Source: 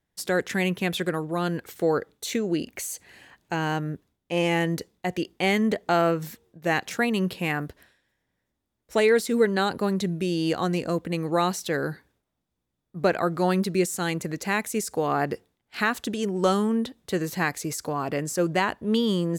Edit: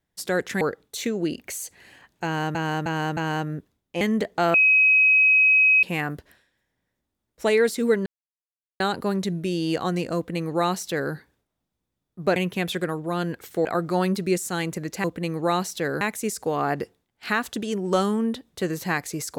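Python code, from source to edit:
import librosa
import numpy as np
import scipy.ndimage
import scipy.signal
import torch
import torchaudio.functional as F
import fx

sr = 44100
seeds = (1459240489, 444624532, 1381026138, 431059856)

y = fx.edit(x, sr, fx.move(start_s=0.61, length_s=1.29, to_s=13.13),
    fx.repeat(start_s=3.53, length_s=0.31, count=4),
    fx.cut(start_s=4.37, length_s=1.15),
    fx.bleep(start_s=6.05, length_s=1.29, hz=2540.0, db=-13.5),
    fx.insert_silence(at_s=9.57, length_s=0.74),
    fx.duplicate(start_s=10.93, length_s=0.97, to_s=14.52), tone=tone)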